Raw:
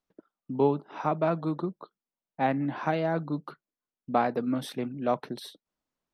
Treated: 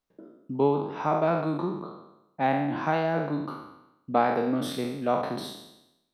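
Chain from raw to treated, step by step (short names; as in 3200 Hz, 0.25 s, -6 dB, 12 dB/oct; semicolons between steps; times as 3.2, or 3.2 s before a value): spectral trails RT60 0.89 s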